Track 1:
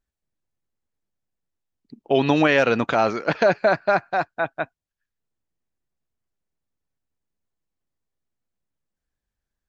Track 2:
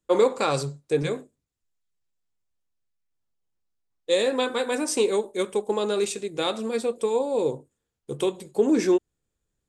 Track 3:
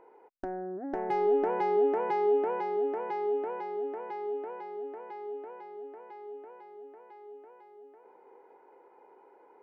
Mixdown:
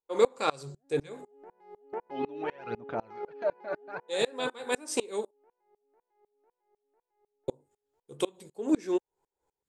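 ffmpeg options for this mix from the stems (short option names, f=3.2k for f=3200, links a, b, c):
-filter_complex "[0:a]aphaser=in_gain=1:out_gain=1:delay=3.6:decay=0.66:speed=0.69:type=sinusoidal,lowpass=f=2k:p=1,volume=-15dB,asplit=2[a][b];[1:a]lowshelf=f=350:g=-5,volume=1.5dB,asplit=3[c][d][e];[c]atrim=end=5.31,asetpts=PTS-STARTPTS,afade=t=out:st=5.306:d=0.004:c=hsin[f];[d]atrim=start=5.31:end=7.48,asetpts=PTS-STARTPTS,volume=0[g];[e]atrim=start=7.48,asetpts=PTS-STARTPTS,afade=t=in:d=0.004:c=hsin[h];[f][g][h]concat=n=3:v=0:a=1[i];[2:a]volume=-1dB[j];[b]apad=whole_len=424557[k];[j][k]sidechaingate=range=-16dB:threshold=-60dB:ratio=16:detection=peak[l];[a][i][l]amix=inputs=3:normalize=0,aeval=exprs='val(0)*pow(10,-28*if(lt(mod(-4*n/s,1),2*abs(-4)/1000),1-mod(-4*n/s,1)/(2*abs(-4)/1000),(mod(-4*n/s,1)-2*abs(-4)/1000)/(1-2*abs(-4)/1000))/20)':c=same"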